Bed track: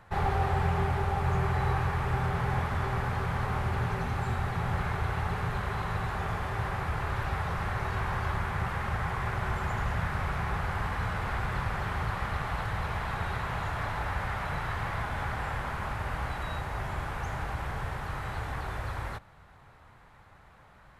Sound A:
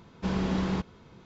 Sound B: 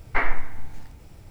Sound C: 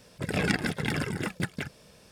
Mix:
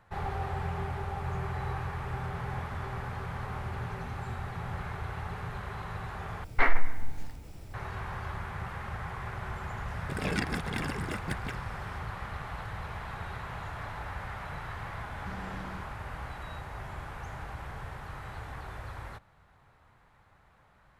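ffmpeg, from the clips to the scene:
ffmpeg -i bed.wav -i cue0.wav -i cue1.wav -i cue2.wav -filter_complex "[0:a]volume=-6.5dB[link_01];[2:a]acontrast=68[link_02];[link_01]asplit=2[link_03][link_04];[link_03]atrim=end=6.444[link_05];[link_02]atrim=end=1.3,asetpts=PTS-STARTPTS,volume=-6.5dB[link_06];[link_04]atrim=start=7.736[link_07];[3:a]atrim=end=2.11,asetpts=PTS-STARTPTS,volume=-5dB,afade=type=in:duration=0.004:curve=hsin,afade=type=out:start_time=2.106:duration=0.004:curve=hsin,adelay=9880[link_08];[1:a]atrim=end=1.25,asetpts=PTS-STARTPTS,volume=-15.5dB,afade=type=in:duration=0.004:curve=hsin,afade=type=out:start_time=1.246:duration=0.004:curve=hsin,adelay=15020[link_09];[link_05][link_06]acrossfade=duration=0.004:curve1=hsin:curve2=hsin[link_10];[link_10][link_07]acrossfade=duration=0.004:curve1=hsin:curve2=hsin[link_11];[link_11][link_08][link_09]amix=inputs=3:normalize=0" out.wav

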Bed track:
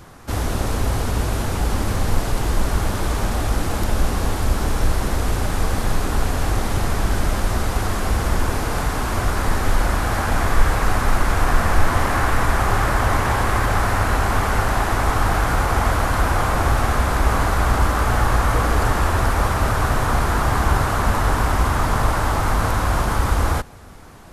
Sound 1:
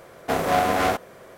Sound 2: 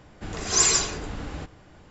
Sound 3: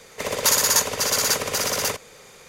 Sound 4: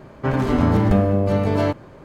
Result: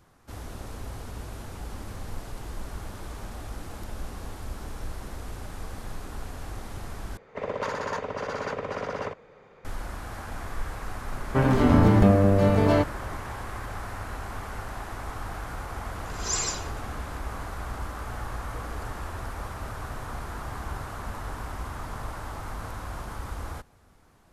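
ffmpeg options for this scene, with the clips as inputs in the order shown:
ffmpeg -i bed.wav -i cue0.wav -i cue1.wav -i cue2.wav -i cue3.wav -filter_complex "[0:a]volume=-17dB[link_01];[3:a]lowpass=1400[link_02];[link_01]asplit=2[link_03][link_04];[link_03]atrim=end=7.174[link_05];[link_02]atrim=end=2.48,asetpts=PTS-STARTPTS,volume=-3dB[link_06];[link_04]atrim=start=9.646[link_07];[4:a]atrim=end=2.04,asetpts=PTS-STARTPTS,volume=-1dB,afade=type=in:duration=0.004:curve=hsin,afade=type=out:start_time=2.036:duration=0.004:curve=hsin,adelay=11110[link_08];[2:a]atrim=end=1.9,asetpts=PTS-STARTPTS,volume=-9dB,afade=type=in:duration=0.004:curve=hsin,afade=type=out:start_time=1.896:duration=0.004:curve=hsin,adelay=15730[link_09];[link_05][link_06]acrossfade=duration=0.004:curve1=hsin:curve2=hsin[link_10];[link_10][link_07]acrossfade=duration=0.004:curve1=hsin:curve2=hsin[link_11];[link_11][link_08][link_09]amix=inputs=3:normalize=0" out.wav

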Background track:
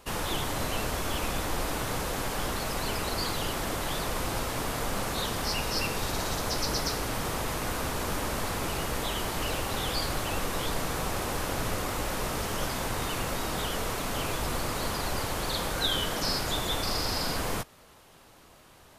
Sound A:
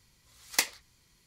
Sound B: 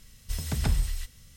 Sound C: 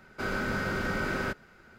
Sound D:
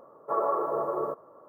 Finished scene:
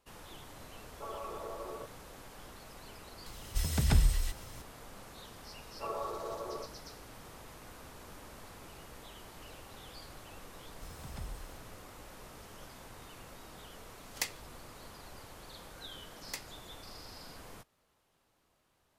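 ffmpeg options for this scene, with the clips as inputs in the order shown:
ffmpeg -i bed.wav -i cue0.wav -i cue1.wav -i cue2.wav -i cue3.wav -filter_complex "[4:a]asplit=2[link_01][link_02];[2:a]asplit=2[link_03][link_04];[1:a]asplit=2[link_05][link_06];[0:a]volume=-19.5dB[link_07];[link_01]alimiter=limit=-21.5dB:level=0:latency=1:release=71[link_08];[link_03]acompressor=mode=upward:threshold=-42dB:ratio=2.5:attack=3.2:release=140:knee=2.83:detection=peak[link_09];[link_08]atrim=end=1.48,asetpts=PTS-STARTPTS,volume=-12.5dB,afade=type=in:duration=0.004:curve=hsin,afade=type=out:start_time=1.476:duration=0.004:curve=hsin,adelay=720[link_10];[link_09]atrim=end=1.36,asetpts=PTS-STARTPTS,afade=type=in:duration=0.004:curve=hsin,afade=type=out:start_time=1.356:duration=0.004:curve=hsin,adelay=3260[link_11];[link_02]atrim=end=1.48,asetpts=PTS-STARTPTS,volume=-11.5dB,afade=type=in:duration=0.004:curve=hsin,afade=type=out:start_time=1.476:duration=0.004:curve=hsin,adelay=5520[link_12];[link_04]atrim=end=1.36,asetpts=PTS-STARTPTS,volume=-18dB,afade=type=in:duration=0.004:curve=hsin,afade=type=out:start_time=1.356:duration=0.004:curve=hsin,adelay=10520[link_13];[link_05]atrim=end=1.26,asetpts=PTS-STARTPTS,volume=-9dB,afade=type=in:duration=0.004:curve=hsin,afade=type=out:start_time=1.256:duration=0.004:curve=hsin,adelay=13630[link_14];[link_06]atrim=end=1.26,asetpts=PTS-STARTPTS,volume=-16dB,afade=type=in:duration=0.004:curve=hsin,afade=type=out:start_time=1.256:duration=0.004:curve=hsin,adelay=15750[link_15];[link_07][link_10][link_11][link_12][link_13][link_14][link_15]amix=inputs=7:normalize=0" out.wav

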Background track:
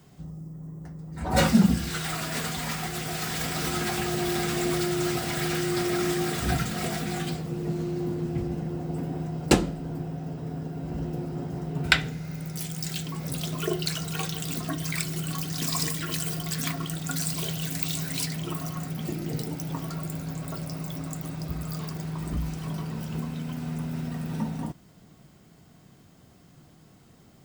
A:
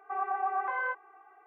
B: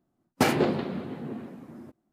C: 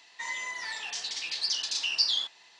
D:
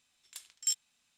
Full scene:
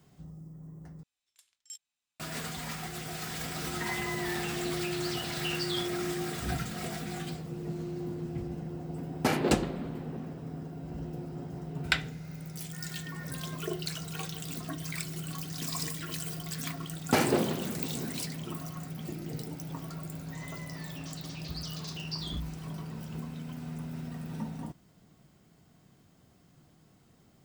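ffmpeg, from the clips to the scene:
ffmpeg -i bed.wav -i cue0.wav -i cue1.wav -i cue2.wav -i cue3.wav -filter_complex "[3:a]asplit=2[link_01][link_02];[2:a]asplit=2[link_03][link_04];[0:a]volume=-7dB[link_05];[4:a]equalizer=frequency=200:width_type=o:width=0.28:gain=-7.5[link_06];[link_01]lowpass=2500[link_07];[1:a]lowpass=frequency=2200:width_type=q:width=0.5098,lowpass=frequency=2200:width_type=q:width=0.6013,lowpass=frequency=2200:width_type=q:width=0.9,lowpass=frequency=2200:width_type=q:width=2.563,afreqshift=-2600[link_08];[link_05]asplit=2[link_09][link_10];[link_09]atrim=end=1.034[link_11];[link_06]atrim=end=1.17,asetpts=PTS-STARTPTS,volume=-15.5dB[link_12];[link_10]atrim=start=2.196[link_13];[link_07]atrim=end=2.59,asetpts=PTS-STARTPTS,volume=-1dB,afade=type=in:duration=0.004:curve=hsin,afade=type=out:start_time=2.586:duration=0.004:curve=hsin,adelay=159201S[link_14];[link_03]atrim=end=2.12,asetpts=PTS-STARTPTS,volume=-5dB,afade=type=in:duration=0.004:curve=hsin,afade=type=out:start_time=2.116:duration=0.004:curve=hsin,adelay=8840[link_15];[link_08]atrim=end=1.46,asetpts=PTS-STARTPTS,volume=-17.5dB,afade=type=in:duration=0.004:curve=hsin,afade=type=out:start_time=1.456:duration=0.004:curve=hsin,adelay=12630[link_16];[link_04]atrim=end=2.12,asetpts=PTS-STARTPTS,volume=-2.5dB,afade=type=in:duration=0.004:curve=hsin,afade=type=out:start_time=2.116:duration=0.004:curve=hsin,adelay=16720[link_17];[link_02]atrim=end=2.59,asetpts=PTS-STARTPTS,volume=-13.5dB,afade=type=in:duration=0.004:curve=hsin,afade=type=out:start_time=2.586:duration=0.004:curve=hsin,adelay=20130[link_18];[link_11][link_12]acrossfade=duration=0.004:curve1=hsin:curve2=hsin[link_19];[link_19][link_13]acrossfade=duration=0.004:curve1=hsin:curve2=hsin[link_20];[link_20][link_14][link_15][link_16][link_17][link_18]amix=inputs=6:normalize=0" out.wav

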